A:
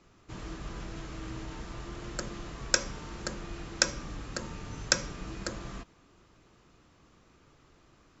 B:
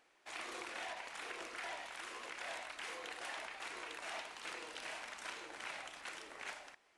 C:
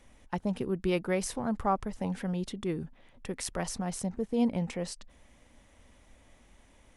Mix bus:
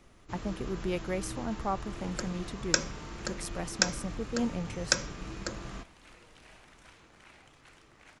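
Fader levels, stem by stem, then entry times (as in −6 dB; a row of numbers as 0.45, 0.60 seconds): −0.5, −11.0, −4.0 decibels; 0.00, 1.60, 0.00 seconds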